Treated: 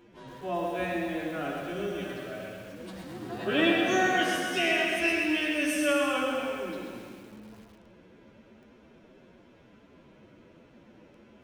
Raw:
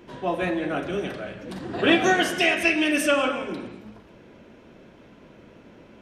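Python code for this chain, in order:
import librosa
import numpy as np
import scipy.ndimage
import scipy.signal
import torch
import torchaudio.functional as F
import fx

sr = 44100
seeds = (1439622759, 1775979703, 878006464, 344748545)

y = fx.stretch_vocoder(x, sr, factor=1.9)
y = fx.echo_feedback(y, sr, ms=131, feedback_pct=56, wet_db=-5.5)
y = fx.echo_crushed(y, sr, ms=108, feedback_pct=55, bits=7, wet_db=-7)
y = F.gain(torch.from_numpy(y), -7.0).numpy()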